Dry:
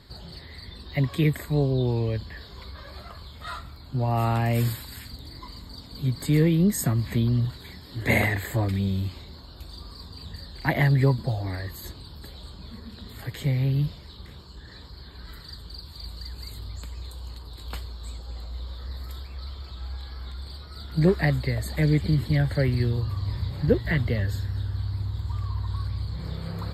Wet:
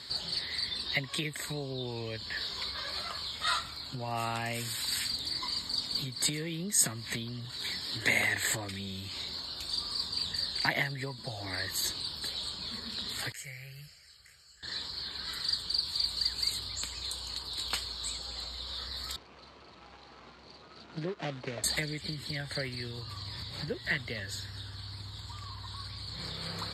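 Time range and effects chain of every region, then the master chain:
0:13.32–0:14.63: guitar amp tone stack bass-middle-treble 5-5-5 + phaser with its sweep stopped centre 990 Hz, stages 6
0:19.16–0:21.64: running median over 25 samples + band-pass filter 180–3,000 Hz
whole clip: low-shelf EQ 340 Hz +10.5 dB; downward compressor 12 to 1, threshold −22 dBFS; meter weighting curve ITU-R 468; level +1.5 dB

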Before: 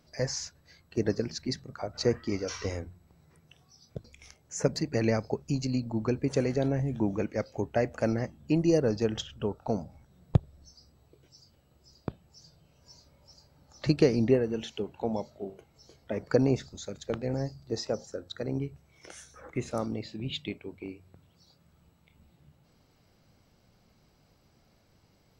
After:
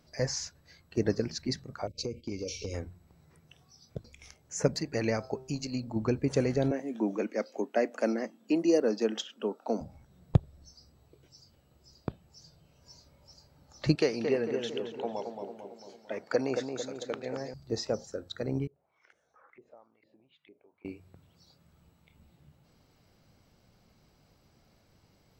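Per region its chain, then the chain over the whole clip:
0:01.87–0:02.74: noise gate −47 dBFS, range −7 dB + linear-phase brick-wall band-stop 590–2,100 Hz + downward compressor, threshold −31 dBFS
0:04.75–0:05.96: low-shelf EQ 380 Hz −6 dB + hum removal 130.2 Hz, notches 13
0:06.71–0:09.81: Butterworth high-pass 210 Hz 48 dB per octave + notch filter 840 Hz, Q 21
0:13.95–0:17.54: meter weighting curve A + feedback echo with a low-pass in the loop 224 ms, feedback 57%, level −5.5 dB
0:18.67–0:20.85: downward compressor 3 to 1, threshold −51 dBFS + auto-filter band-pass saw up 2.2 Hz 380–1,900 Hz
whole clip: no processing

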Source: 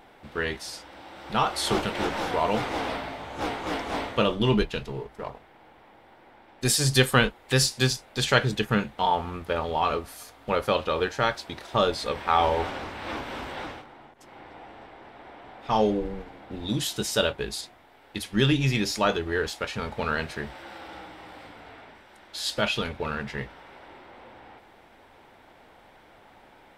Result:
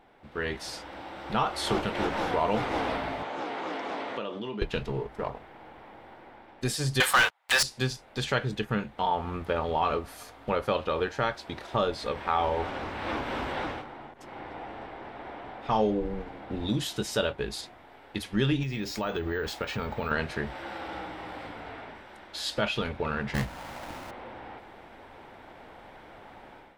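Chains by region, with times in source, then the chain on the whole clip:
0:03.23–0:04.62: downward compressor, threshold −34 dBFS + band-pass filter 250–7,000 Hz
0:07.00–0:07.63: high-pass filter 760 Hz 24 dB per octave + leveller curve on the samples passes 5
0:18.63–0:20.11: downward compressor 3 to 1, threshold −30 dBFS + bad sample-rate conversion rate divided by 2×, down filtered, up hold
0:23.34–0:24.11: each half-wave held at its own peak + parametric band 400 Hz −11.5 dB 0.51 octaves
whole clip: automatic gain control gain up to 11.5 dB; high-shelf EQ 4,000 Hz −8.5 dB; downward compressor 1.5 to 1, threshold −25 dBFS; level −6 dB

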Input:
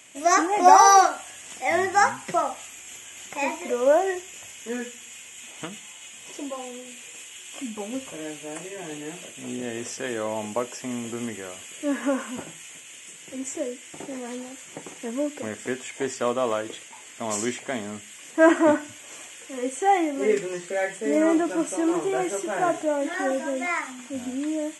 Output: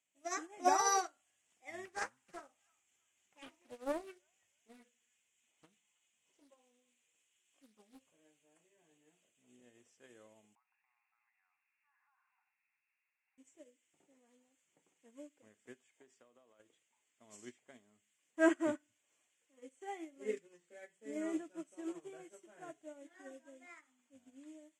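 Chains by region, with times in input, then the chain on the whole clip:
0:01.85–0:08.01: delay with a high-pass on its return 321 ms, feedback 32%, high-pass 1,800 Hz, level −12 dB + highs frequency-modulated by the lows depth 0.45 ms
0:10.55–0:13.38: linear-phase brick-wall band-pass 730–2,800 Hz + downward compressor 4 to 1, threshold −40 dBFS
0:15.89–0:16.60: high-pass filter 150 Hz + downward compressor, threshold −27 dBFS
whole clip: dynamic equaliser 890 Hz, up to −8 dB, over −36 dBFS, Q 1.4; expander for the loud parts 2.5 to 1, over −34 dBFS; level −8.5 dB

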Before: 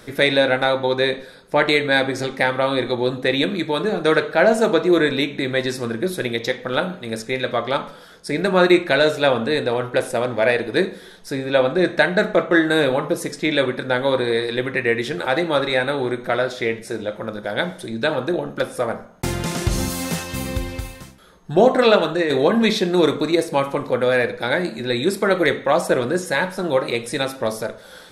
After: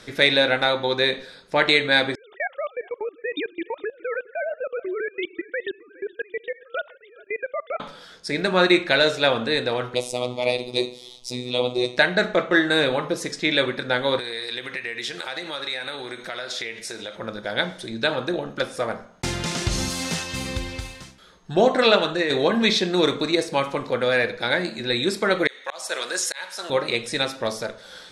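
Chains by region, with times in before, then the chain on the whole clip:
0:02.15–0:07.80: three sine waves on the formant tracks + output level in coarse steps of 23 dB + single-tap delay 415 ms −22.5 dB
0:09.94–0:11.98: Butterworth band-reject 1,600 Hz, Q 1.3 + high-shelf EQ 3,500 Hz +6.5 dB + phases set to zero 124 Hz
0:14.19–0:17.16: spectral tilt +2.5 dB per octave + downward compressor 4 to 1, threshold −27 dBFS
0:25.47–0:26.70: high-pass filter 650 Hz + high-shelf EQ 3,600 Hz +12 dB + volume swells 383 ms
whole clip: low-pass filter 6,000 Hz 12 dB per octave; high-shelf EQ 2,200 Hz +10.5 dB; level −4.5 dB

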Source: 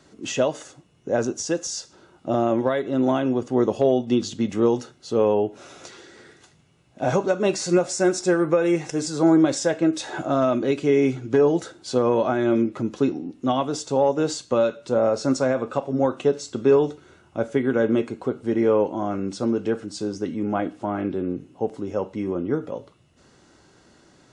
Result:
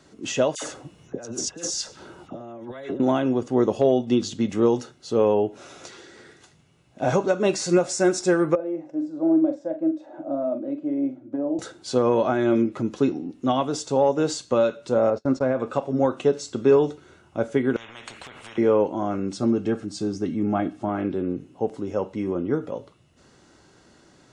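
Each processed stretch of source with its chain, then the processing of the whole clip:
0:00.55–0:03.00: compressor whose output falls as the input rises −34 dBFS + all-pass dispersion lows, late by 74 ms, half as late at 1,400 Hz
0:08.55–0:11.59: pair of resonant band-passes 420 Hz, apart 0.93 octaves + double-tracking delay 43 ms −9 dB
0:15.10–0:15.60: noise gate −30 dBFS, range −31 dB + head-to-tape spacing loss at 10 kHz 23 dB
0:17.76–0:18.58: high shelf with overshoot 3,400 Hz −9.5 dB, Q 1.5 + downward compressor 4 to 1, threshold −29 dBFS + every bin compressed towards the loudest bin 10 to 1
0:19.37–0:20.89: low-shelf EQ 210 Hz +5 dB + notch comb filter 490 Hz
whole clip: no processing

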